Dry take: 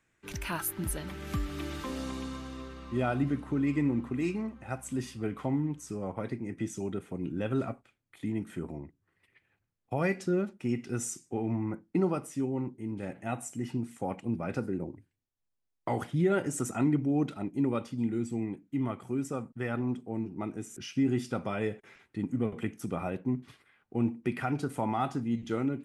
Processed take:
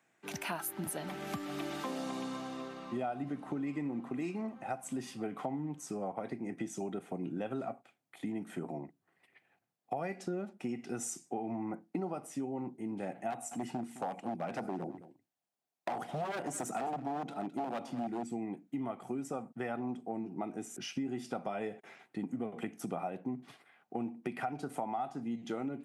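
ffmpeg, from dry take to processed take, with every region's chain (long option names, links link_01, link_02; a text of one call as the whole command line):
ffmpeg -i in.wav -filter_complex "[0:a]asettb=1/sr,asplit=3[link_01][link_02][link_03];[link_01]atrim=end=13.304[link_04];[link_02]atrim=start=13.3:end=18.23,asetpts=PTS-STARTPTS,afade=type=in:duration=0.004:curve=qsin,afade=type=out:start_time=4.926:duration=0.004:curve=qsin,aeval=exprs='0.0447*(abs(mod(val(0)/0.0447+3,4)-2)-1)':channel_layout=same,aecho=1:1:212:0.126,atrim=end_sample=217413[link_05];[link_03]atrim=start=18.226[link_06];[link_04][link_05]acrossfade=duration=0.004:curve1=hsin:curve2=qsin[link_07];[link_07][link_06]acrossfade=duration=0.004:curve1=qsin:curve2=hsin,highpass=frequency=150:width=0.5412,highpass=frequency=150:width=1.3066,equalizer=frequency=730:width=3.2:gain=12,acompressor=threshold=-34dB:ratio=6" out.wav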